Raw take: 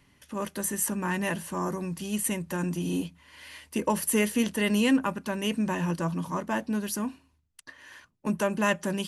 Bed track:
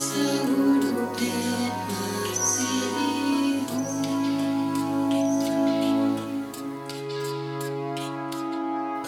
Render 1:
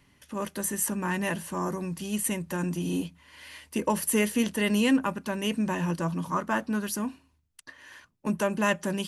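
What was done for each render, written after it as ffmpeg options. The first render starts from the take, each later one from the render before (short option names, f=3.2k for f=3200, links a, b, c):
-filter_complex "[0:a]asettb=1/sr,asplit=3[a][b][c];[a]atrim=end=6.304[d];[b]atrim=start=6.3:end=6.88,asetpts=PTS-STARTPTS,afade=t=in:d=0.004:c=qsin,afade=t=out:st=0.576:d=0.004:c=qsin,equalizer=f=1.3k:t=o:w=0.52:g=9[e];[c]atrim=start=6.876[f];[d][e]acrossfade=d=0.004:c1=hsin:c2=qsin[g];[g][f]acrossfade=d=0.004:c1=qsin:c2=hsin"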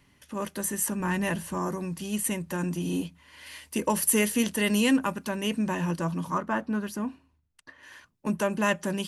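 -filter_complex "[0:a]asettb=1/sr,asplit=3[a][b][c];[a]atrim=end=1.004[d];[b]atrim=start=1:end=1.58,asetpts=PTS-STARTPTS,afade=t=in:d=0.004:c=qsin,afade=t=out:st=0.576:d=0.004:c=qsin,lowshelf=f=94:g=11.5[e];[c]atrim=start=1.576[f];[d][e]acrossfade=d=0.004:c1=hsin:c2=qsin[g];[g][f]acrossfade=d=0.004:c1=qsin:c2=hsin,asettb=1/sr,asplit=3[h][i][j];[h]atrim=end=3.464[k];[i]atrim=start=3.46:end=5.29,asetpts=PTS-STARTPTS,afade=t=in:d=0.004:c=qsin,afade=t=out:st=1.826:d=0.004:c=qsin,highshelf=f=4.1k:g=5.5[l];[j]atrim=start=5.286[m];[k][l]acrossfade=d=0.004:c1=hsin:c2=qsin[n];[n][m]acrossfade=d=0.004:c1=qsin:c2=hsin,asettb=1/sr,asplit=3[o][p][q];[o]atrim=end=6.384[r];[p]atrim=start=6.38:end=7.83,asetpts=PTS-STARTPTS,afade=t=in:d=0.004:c=qsin,afade=t=out:st=1.446:d=0.004:c=qsin,highshelf=f=3.4k:g=-11[s];[q]atrim=start=7.826[t];[r][s]acrossfade=d=0.004:c1=hsin:c2=qsin[u];[u][t]acrossfade=d=0.004:c1=qsin:c2=hsin"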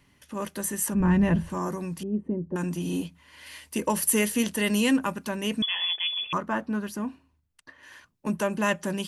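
-filter_complex "[0:a]asplit=3[a][b][c];[a]afade=t=out:st=0.93:d=0.02[d];[b]aemphasis=mode=reproduction:type=riaa,afade=t=in:st=0.93:d=0.02,afade=t=out:st=1.49:d=0.02[e];[c]afade=t=in:st=1.49:d=0.02[f];[d][e][f]amix=inputs=3:normalize=0,asettb=1/sr,asplit=3[g][h][i];[g]atrim=end=2.034[j];[h]atrim=start=2.03:end=2.56,asetpts=PTS-STARTPTS,afade=t=in:d=0.004:c=qsin,afade=t=out:st=0.526:d=0.004:c=qsin,lowpass=f=380:t=q:w=1.9[k];[i]atrim=start=2.556[l];[j][k]acrossfade=d=0.004:c1=hsin:c2=qsin[m];[m][l]acrossfade=d=0.004:c1=qsin:c2=hsin,asettb=1/sr,asplit=3[n][o][p];[n]atrim=end=5.624[q];[o]atrim=start=5.62:end=6.33,asetpts=PTS-STARTPTS,afade=t=in:d=0.004:c=qsin,afade=t=out:st=0.706:d=0.004:c=qsin,lowpass=f=3.1k:t=q:w=0.5098,lowpass=f=3.1k:t=q:w=0.6013,lowpass=f=3.1k:t=q:w=0.9,lowpass=f=3.1k:t=q:w=2.563,afreqshift=-3600[r];[p]atrim=start=6.326[s];[q][r]acrossfade=d=0.004:c1=hsin:c2=qsin[t];[t][s]acrossfade=d=0.004:c1=qsin:c2=hsin"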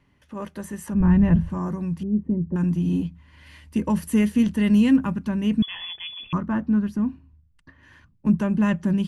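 -af "lowpass=f=1.7k:p=1,asubboost=boost=7.5:cutoff=190"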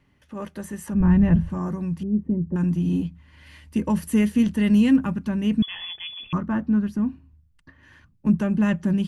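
-af "bandreject=f=1k:w=17"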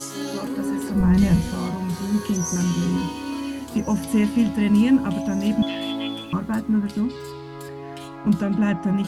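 -filter_complex "[1:a]volume=-5.5dB[a];[0:a][a]amix=inputs=2:normalize=0"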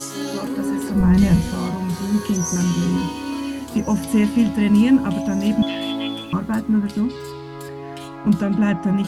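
-af "volume=2.5dB"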